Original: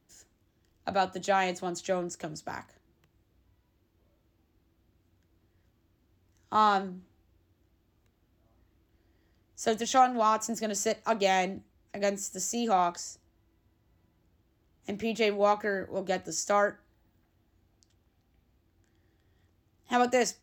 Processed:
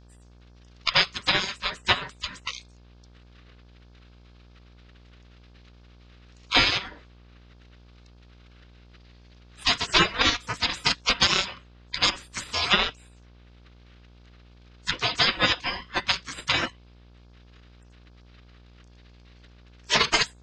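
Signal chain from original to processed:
frequency inversion band by band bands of 1,000 Hz
transient designer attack +10 dB, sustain −3 dB
low-pass filter 4,600 Hz 24 dB per octave
gate on every frequency bin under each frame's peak −30 dB weak
hum with harmonics 60 Hz, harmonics 29, −76 dBFS −7 dB per octave
boost into a limiter +30 dB
level −6 dB

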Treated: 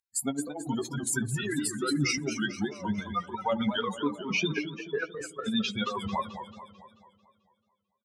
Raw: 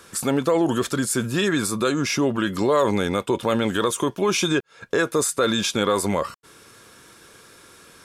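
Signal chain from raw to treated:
spectral dynamics exaggerated over time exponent 3
low-pass filter 9,200 Hz 12 dB per octave, from 0:03.81 2,400 Hz
reverb reduction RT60 1.9 s
high-pass filter 77 Hz
mains-hum notches 60/120/180/240/300 Hz
compressor whose output falls as the input rises −32 dBFS, ratio −0.5
double-tracking delay 14 ms −10.5 dB
feedback echo with a band-pass in the loop 72 ms, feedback 82%, band-pass 470 Hz, level −21 dB
feedback echo with a swinging delay time 220 ms, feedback 51%, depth 150 cents, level −10 dB
level +2 dB

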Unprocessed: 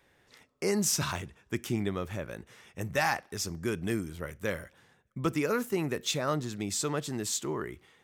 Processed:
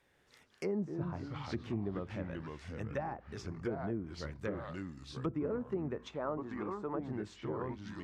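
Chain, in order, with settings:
delay with pitch and tempo change per echo 137 ms, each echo −3 semitones, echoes 3, each echo −6 dB
treble cut that deepens with the level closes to 680 Hz, closed at −25.5 dBFS
0:05.96–0:06.99: octave-band graphic EQ 125/1,000/4,000 Hz −10/+6/−4 dB
level −6 dB

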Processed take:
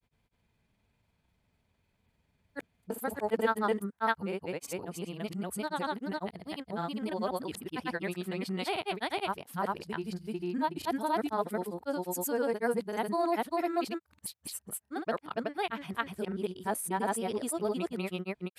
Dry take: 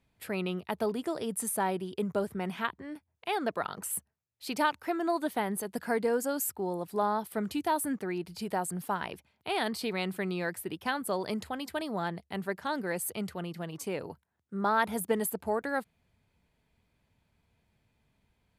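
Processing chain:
played backwards from end to start
granular cloud 100 ms, grains 20 per second, spray 402 ms, pitch spread up and down by 0 semitones

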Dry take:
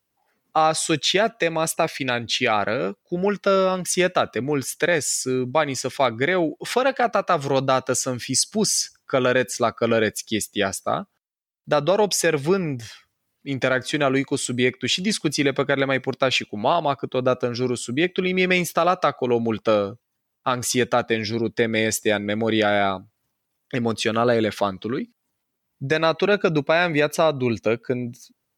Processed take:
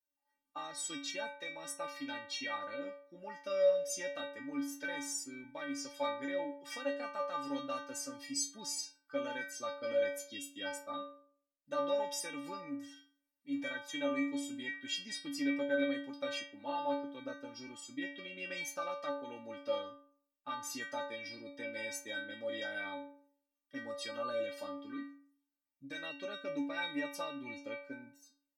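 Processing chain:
stiff-string resonator 280 Hz, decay 0.59 s, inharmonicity 0.008

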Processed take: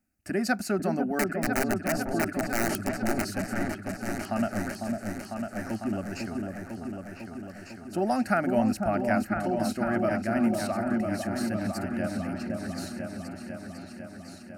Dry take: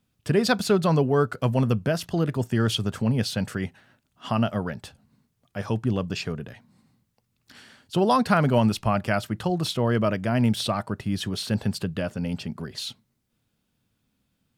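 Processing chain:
0:01.19–0:03.24: wrap-around overflow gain 15.5 dB
phaser with its sweep stopped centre 690 Hz, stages 8
echo whose low-pass opens from repeat to repeat 500 ms, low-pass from 750 Hz, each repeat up 2 octaves, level −3 dB
level −2 dB

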